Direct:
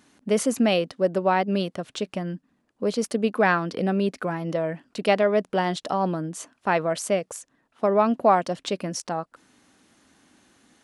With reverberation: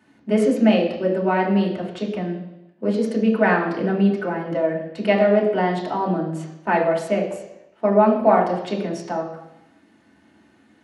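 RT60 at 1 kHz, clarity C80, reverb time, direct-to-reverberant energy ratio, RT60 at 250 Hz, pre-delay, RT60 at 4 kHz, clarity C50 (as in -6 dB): 0.90 s, 8.5 dB, 0.90 s, -3.0 dB, 0.85 s, 3 ms, 0.90 s, 6.0 dB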